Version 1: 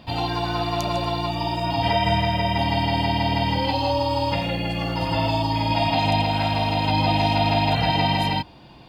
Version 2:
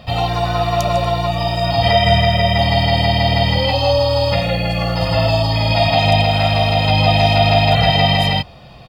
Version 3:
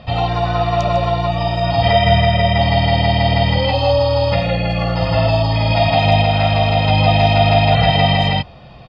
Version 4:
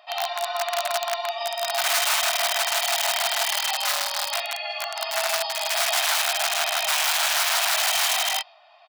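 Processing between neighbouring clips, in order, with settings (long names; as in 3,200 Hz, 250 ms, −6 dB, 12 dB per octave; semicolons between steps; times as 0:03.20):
comb filter 1.6 ms, depth 69%; level +5.5 dB
high-frequency loss of the air 150 metres; level +1 dB
dynamic equaliser 4,200 Hz, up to +7 dB, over −36 dBFS, Q 0.85; wrap-around overflow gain 7.5 dB; linear-phase brick-wall high-pass 590 Hz; level −8.5 dB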